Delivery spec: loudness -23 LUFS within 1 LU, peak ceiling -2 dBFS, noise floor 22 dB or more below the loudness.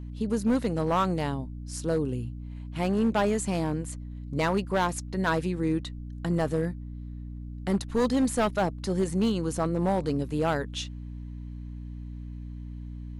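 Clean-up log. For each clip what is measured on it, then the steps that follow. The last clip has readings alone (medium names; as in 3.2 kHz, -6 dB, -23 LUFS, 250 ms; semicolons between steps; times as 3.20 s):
clipped samples 1.5%; clipping level -19.0 dBFS; hum 60 Hz; highest harmonic 300 Hz; hum level -36 dBFS; loudness -28.5 LUFS; peak level -19.0 dBFS; loudness target -23.0 LUFS
-> clip repair -19 dBFS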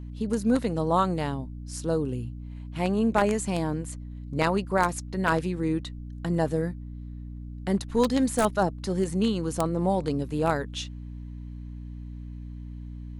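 clipped samples 0.0%; hum 60 Hz; highest harmonic 300 Hz; hum level -36 dBFS
-> hum notches 60/120/180/240/300 Hz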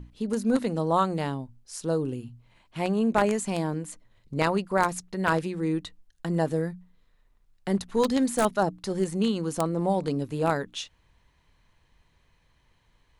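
hum not found; loudness -27.5 LUFS; peak level -9.5 dBFS; loudness target -23.0 LUFS
-> trim +4.5 dB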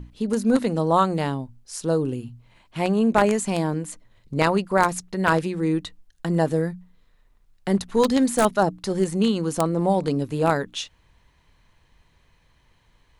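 loudness -23.0 LUFS; peak level -5.0 dBFS; noise floor -61 dBFS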